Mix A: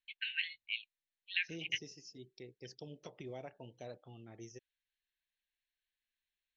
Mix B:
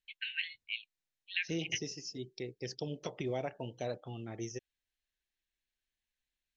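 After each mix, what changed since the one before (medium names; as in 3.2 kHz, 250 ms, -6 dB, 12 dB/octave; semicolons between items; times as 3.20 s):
second voice +10.0 dB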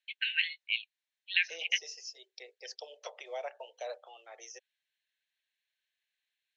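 first voice +7.0 dB; master: add steep high-pass 510 Hz 48 dB/octave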